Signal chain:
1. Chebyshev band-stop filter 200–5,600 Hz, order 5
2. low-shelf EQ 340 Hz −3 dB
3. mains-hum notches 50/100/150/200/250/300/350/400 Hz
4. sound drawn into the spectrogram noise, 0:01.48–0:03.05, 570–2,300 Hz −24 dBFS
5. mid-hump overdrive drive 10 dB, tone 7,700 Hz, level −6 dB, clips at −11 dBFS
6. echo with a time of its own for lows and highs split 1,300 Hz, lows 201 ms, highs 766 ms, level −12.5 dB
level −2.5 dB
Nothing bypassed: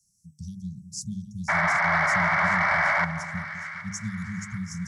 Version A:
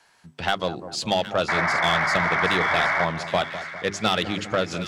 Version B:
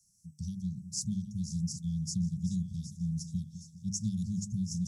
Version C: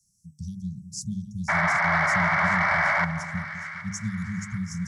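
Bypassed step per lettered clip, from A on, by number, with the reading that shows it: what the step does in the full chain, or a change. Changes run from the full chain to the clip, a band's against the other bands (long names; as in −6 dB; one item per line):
1, 4 kHz band +13.5 dB
4, 4 kHz band −4.5 dB
2, change in momentary loudness spread −2 LU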